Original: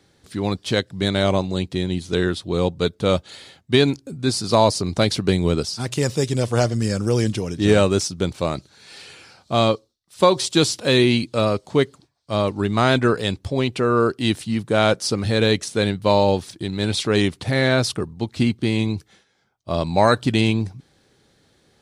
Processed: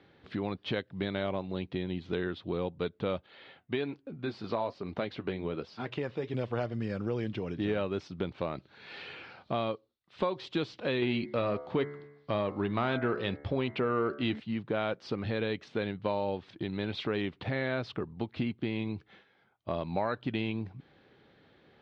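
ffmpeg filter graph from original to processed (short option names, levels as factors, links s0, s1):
-filter_complex "[0:a]asettb=1/sr,asplit=3[s0][s1][s2];[s0]atrim=end=3.264[s3];[s1]atrim=start=3.26:end=6.34,asetpts=PTS-STARTPTS,afade=t=in:d=0.004:c=qsin,afade=t=out:st=3.076:d=0.004:c=qsin,bass=f=250:g=-5,treble=f=4000:g=-6,flanger=delay=3.5:depth=5.9:regen=-65:speed=1.2:shape=triangular[s4];[s2]atrim=start=6.336[s5];[s3][s4]acrossfade=d=0.004:c1=hsin:c2=qsin[s6];[s6][s5]acrossfade=d=0.004:c1=qsin:c2=hsin,asettb=1/sr,asplit=3[s7][s8][s9];[s7]atrim=end=11.024[s10];[s8]atrim=start=11.02:end=14.4,asetpts=PTS-STARTPTS,afade=t=in:d=0.004:c=qsin,afade=t=out:st=3.376:d=0.004:c=qsin,lowpass=7800,bandreject=f=72.37:t=h:w=4,bandreject=f=144.74:t=h:w=4,bandreject=f=217.11:t=h:w=4,bandreject=f=289.48:t=h:w=4,bandreject=f=361.85:t=h:w=4,bandreject=f=434.22:t=h:w=4,bandreject=f=506.59:t=h:w=4,bandreject=f=578.96:t=h:w=4,bandreject=f=651.33:t=h:w=4,bandreject=f=723.7:t=h:w=4,bandreject=f=796.07:t=h:w=4,bandreject=f=868.44:t=h:w=4,bandreject=f=940.81:t=h:w=4,bandreject=f=1013.18:t=h:w=4,bandreject=f=1085.55:t=h:w=4,bandreject=f=1157.92:t=h:w=4,bandreject=f=1230.29:t=h:w=4,bandreject=f=1302.66:t=h:w=4,bandreject=f=1375.03:t=h:w=4,bandreject=f=1447.4:t=h:w=4,bandreject=f=1519.77:t=h:w=4,bandreject=f=1592.14:t=h:w=4,bandreject=f=1664.51:t=h:w=4,bandreject=f=1736.88:t=h:w=4,bandreject=f=1809.25:t=h:w=4,bandreject=f=1881.62:t=h:w=4,bandreject=f=1953.99:t=h:w=4,bandreject=f=2026.36:t=h:w=4,bandreject=f=2098.73:t=h:w=4,bandreject=f=2171.1:t=h:w=4,acontrast=65[s11];[s9]atrim=start=14.396[s12];[s10][s11]acrossfade=d=0.004:c1=hsin:c2=qsin[s13];[s13][s12]acrossfade=d=0.004:c1=qsin:c2=hsin,lowpass=f=3200:w=0.5412,lowpass=f=3200:w=1.3066,lowshelf=f=94:g=-10.5,acompressor=threshold=0.0224:ratio=3"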